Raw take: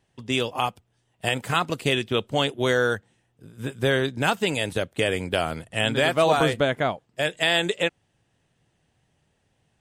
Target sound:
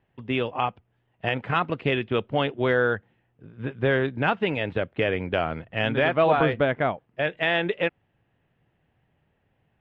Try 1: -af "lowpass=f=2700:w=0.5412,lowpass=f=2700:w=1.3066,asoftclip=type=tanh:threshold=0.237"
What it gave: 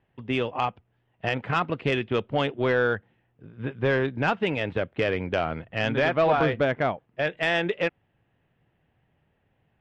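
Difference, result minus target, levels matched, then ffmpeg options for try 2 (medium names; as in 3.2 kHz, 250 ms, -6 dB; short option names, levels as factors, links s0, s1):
saturation: distortion +18 dB
-af "lowpass=f=2700:w=0.5412,lowpass=f=2700:w=1.3066,asoftclip=type=tanh:threshold=0.794"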